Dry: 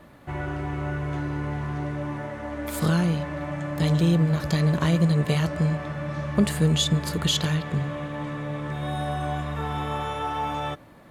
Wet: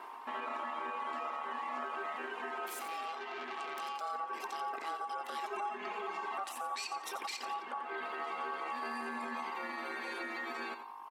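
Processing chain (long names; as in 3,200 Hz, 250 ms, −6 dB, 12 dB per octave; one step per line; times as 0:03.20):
reverb reduction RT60 1.2 s
mains hum 50 Hz, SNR 19 dB
downward compressor 6 to 1, threshold −32 dBFS, peak gain reduction 15.5 dB
ring modulation 980 Hz
0:05.43–0:06.08: comb filter 4.8 ms
brickwall limiter −30.5 dBFS, peak gain reduction 11.5 dB
linear-phase brick-wall high-pass 210 Hz
on a send: repeating echo 88 ms, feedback 35%, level −10.5 dB
0:02.66–0:04.01: on the sum: saturating transformer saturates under 1,800 Hz
level +1 dB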